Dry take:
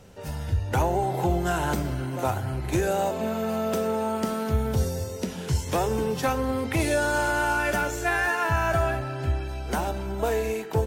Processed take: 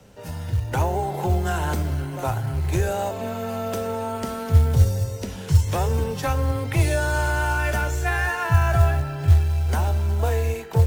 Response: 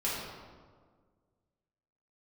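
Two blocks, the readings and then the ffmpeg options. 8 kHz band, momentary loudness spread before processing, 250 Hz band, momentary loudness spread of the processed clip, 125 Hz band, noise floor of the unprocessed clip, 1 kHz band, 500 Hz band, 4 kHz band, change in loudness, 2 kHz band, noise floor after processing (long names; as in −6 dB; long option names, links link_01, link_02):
+0.5 dB, 6 LU, −2.0 dB, 9 LU, +8.5 dB, −35 dBFS, 0.0 dB, −1.0 dB, +0.5 dB, +3.5 dB, 0.0 dB, −34 dBFS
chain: -af "asubboost=boost=6.5:cutoff=84,afreqshift=13,acrusher=bits=7:mode=log:mix=0:aa=0.000001"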